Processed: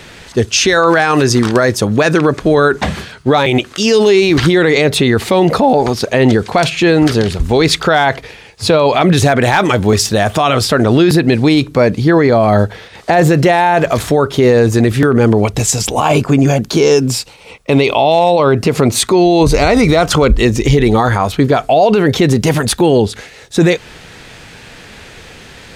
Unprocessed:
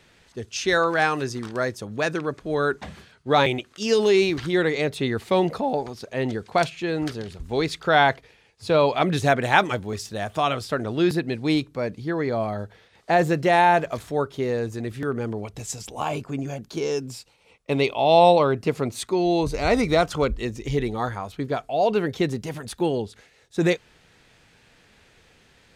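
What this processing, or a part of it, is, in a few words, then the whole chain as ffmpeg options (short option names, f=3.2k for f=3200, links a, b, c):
loud club master: -af "acompressor=threshold=-22dB:ratio=2,asoftclip=type=hard:threshold=-12.5dB,alimiter=level_in=22dB:limit=-1dB:release=50:level=0:latency=1,volume=-1dB"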